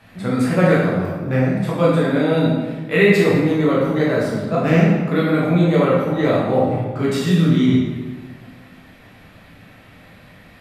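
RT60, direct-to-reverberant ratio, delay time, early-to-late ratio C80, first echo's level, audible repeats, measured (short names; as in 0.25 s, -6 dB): 1.4 s, -6.0 dB, none, 2.5 dB, none, none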